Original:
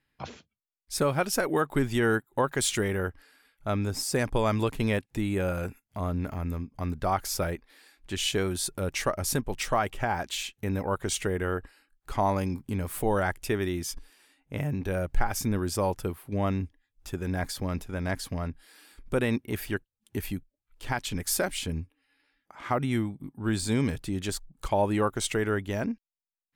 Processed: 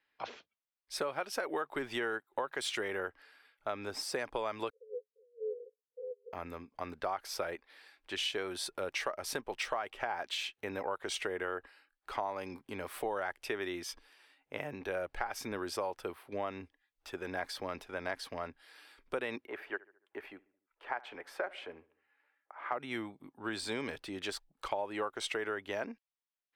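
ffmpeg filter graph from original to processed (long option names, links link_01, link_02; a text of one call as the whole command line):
ffmpeg -i in.wav -filter_complex "[0:a]asettb=1/sr,asplit=3[link_01][link_02][link_03];[link_01]atrim=end=4.704[link_04];[link_02]atrim=start=4.7:end=6.33,asetpts=PTS-STARTPTS,afade=type=in:duration=0.004:curve=qsin,afade=type=out:start_time=1.626:duration=0.004:curve=qsin,asuperpass=centerf=590:order=12:qfactor=5.8,afreqshift=-120[link_05];[link_03]atrim=start=6.326[link_06];[link_04][link_05]acrossfade=duration=0.004:curve1=hsin:curve2=qsin[link_07];[link_07][link_06]acrossfade=duration=0.004:curve1=qsin:curve2=hsin,asettb=1/sr,asplit=3[link_08][link_09][link_10];[link_08]atrim=end=19.474[link_11];[link_09]atrim=start=19.47:end=22.72,asetpts=PTS-STARTPTS,afade=type=in:duration=0.004:curve=qsin,afade=type=out:start_time=3.246:duration=0.004:curve=qsin,acrossover=split=340 2200:gain=0.158 1 0.0891[link_12][link_13][link_14];[link_12][link_13][link_14]amix=inputs=3:normalize=0,asplit=2[link_15][link_16];[link_16]adelay=72,lowpass=frequency=2400:poles=1,volume=-21.5dB,asplit=2[link_17][link_18];[link_18]adelay=72,lowpass=frequency=2400:poles=1,volume=0.52,asplit=2[link_19][link_20];[link_20]adelay=72,lowpass=frequency=2400:poles=1,volume=0.52,asplit=2[link_21][link_22];[link_22]adelay=72,lowpass=frequency=2400:poles=1,volume=0.52[link_23];[link_15][link_17][link_19][link_21][link_23]amix=inputs=5:normalize=0,atrim=end_sample=143325[link_24];[link_10]atrim=start=22.716[link_25];[link_11][link_24]acrossfade=duration=0.004:curve1=hsin:curve2=qsin[link_26];[link_26][link_25]acrossfade=duration=0.004:curve1=qsin:curve2=hsin,acrossover=split=370 4900:gain=0.0794 1 0.224[link_27][link_28][link_29];[link_27][link_28][link_29]amix=inputs=3:normalize=0,bandreject=frequency=6900:width=12,acompressor=threshold=-32dB:ratio=6" out.wav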